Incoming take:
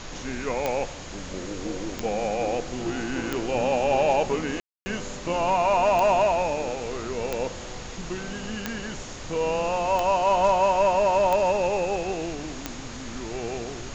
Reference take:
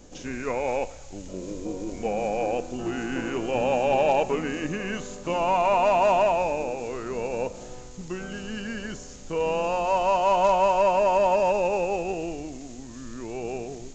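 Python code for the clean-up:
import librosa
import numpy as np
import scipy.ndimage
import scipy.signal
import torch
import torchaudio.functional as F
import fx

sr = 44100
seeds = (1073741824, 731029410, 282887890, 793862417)

y = fx.fix_declick_ar(x, sr, threshold=10.0)
y = fx.notch(y, sr, hz=6600.0, q=30.0)
y = fx.fix_ambience(y, sr, seeds[0], print_start_s=7.48, print_end_s=7.98, start_s=4.6, end_s=4.86)
y = fx.noise_reduce(y, sr, print_start_s=7.48, print_end_s=7.98, reduce_db=6.0)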